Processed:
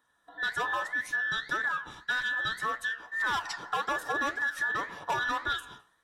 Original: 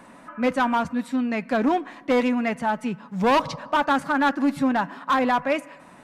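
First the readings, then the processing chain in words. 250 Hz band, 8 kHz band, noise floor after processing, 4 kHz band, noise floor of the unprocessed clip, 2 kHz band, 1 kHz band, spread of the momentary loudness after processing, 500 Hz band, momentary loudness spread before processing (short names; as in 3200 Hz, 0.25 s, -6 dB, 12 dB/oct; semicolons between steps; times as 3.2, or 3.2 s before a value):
-25.0 dB, -0.5 dB, -71 dBFS, -1.5 dB, -48 dBFS, +1.0 dB, -9.5 dB, 4 LU, -16.5 dB, 6 LU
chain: band inversion scrambler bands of 2000 Hz; gate -44 dBFS, range -14 dB; high shelf 3400 Hz +8.5 dB; AGC gain up to 10.5 dB; flange 1.8 Hz, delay 7.9 ms, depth 9.4 ms, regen +74%; compressor, threshold -19 dBFS, peak gain reduction 8 dB; gain -8.5 dB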